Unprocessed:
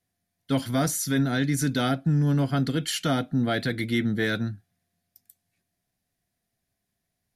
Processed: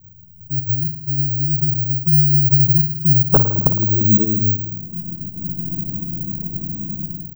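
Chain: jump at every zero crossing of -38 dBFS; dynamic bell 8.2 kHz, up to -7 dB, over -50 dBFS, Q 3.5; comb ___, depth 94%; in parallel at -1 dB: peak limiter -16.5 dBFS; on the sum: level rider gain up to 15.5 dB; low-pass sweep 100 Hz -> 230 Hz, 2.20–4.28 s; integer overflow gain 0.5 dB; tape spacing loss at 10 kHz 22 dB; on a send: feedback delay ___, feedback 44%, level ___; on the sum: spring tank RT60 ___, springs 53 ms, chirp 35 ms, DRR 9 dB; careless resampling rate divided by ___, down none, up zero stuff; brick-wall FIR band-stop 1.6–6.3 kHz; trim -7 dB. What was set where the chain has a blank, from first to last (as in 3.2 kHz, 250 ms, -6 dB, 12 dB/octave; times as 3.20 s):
6.4 ms, 219 ms, -22.5 dB, 1.2 s, 2×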